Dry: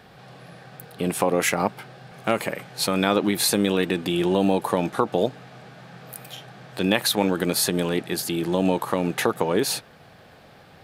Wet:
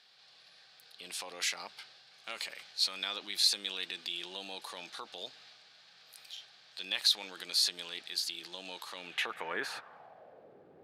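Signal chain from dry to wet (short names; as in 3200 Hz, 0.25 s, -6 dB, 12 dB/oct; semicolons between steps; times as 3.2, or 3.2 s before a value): transient shaper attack -2 dB, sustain +4 dB; band-pass sweep 4400 Hz -> 390 Hz, 8.9–10.58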